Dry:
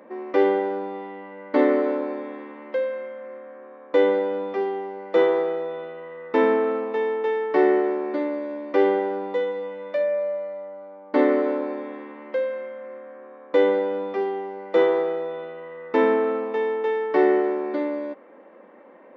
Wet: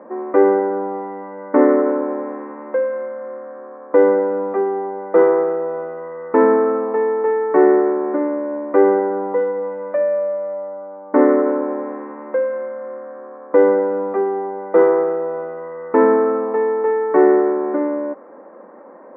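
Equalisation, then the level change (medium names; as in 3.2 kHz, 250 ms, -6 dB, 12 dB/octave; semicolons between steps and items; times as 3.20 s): low-pass 1.5 kHz 24 dB/octave; dynamic bell 710 Hz, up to -4 dB, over -31 dBFS, Q 1.5; peaking EQ 1.1 kHz +3 dB 2.5 oct; +6.0 dB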